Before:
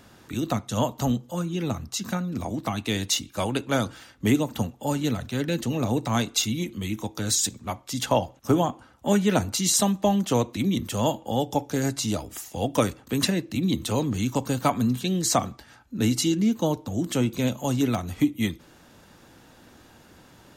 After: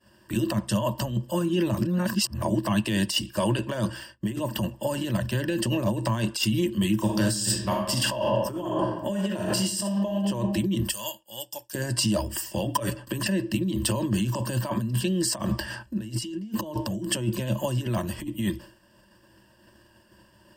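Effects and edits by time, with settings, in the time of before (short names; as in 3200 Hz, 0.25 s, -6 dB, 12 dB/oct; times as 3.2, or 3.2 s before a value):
1.77–2.42 reverse
6.95–10.19 reverb throw, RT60 0.96 s, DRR 1.5 dB
10.91–11.75 pre-emphasis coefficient 0.97
12.65–13.15 comb 7 ms
15.37–17.06 gain +8.5 dB
whole clip: negative-ratio compressor -28 dBFS, ratio -1; expander -38 dBFS; ripple EQ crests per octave 1.3, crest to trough 15 dB; gain -1.5 dB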